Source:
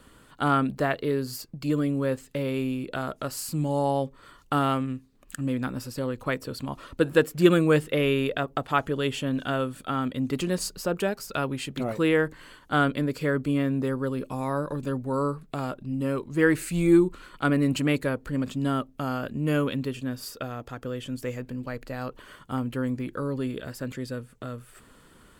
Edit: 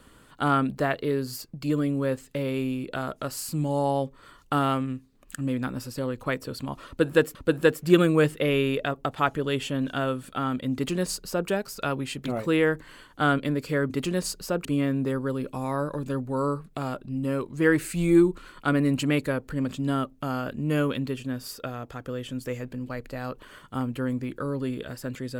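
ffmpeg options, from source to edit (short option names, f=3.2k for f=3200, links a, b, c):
-filter_complex "[0:a]asplit=4[a][b][c][d];[a]atrim=end=7.352[e];[b]atrim=start=6.868:end=13.422[f];[c]atrim=start=10.258:end=11.012[g];[d]atrim=start=13.418[h];[e][f]acrossfade=d=0.004:c1=hsin:c2=hsin[i];[i][g]acrossfade=d=0.004:c1=hsin:c2=hsin[j];[j][h]acrossfade=d=0.004:c1=hsin:c2=hsin"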